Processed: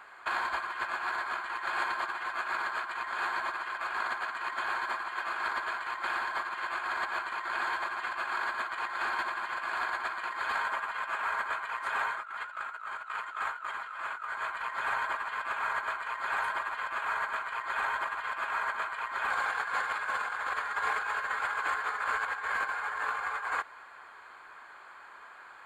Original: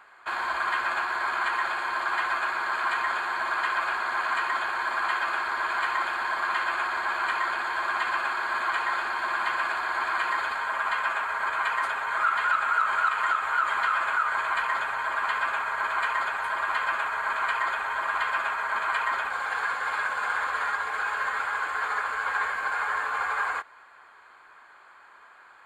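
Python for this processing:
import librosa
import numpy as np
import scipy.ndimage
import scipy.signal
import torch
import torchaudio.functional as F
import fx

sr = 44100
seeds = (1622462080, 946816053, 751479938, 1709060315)

y = fx.over_compress(x, sr, threshold_db=-31.0, ratio=-0.5)
y = y * librosa.db_to_amplitude(-2.0)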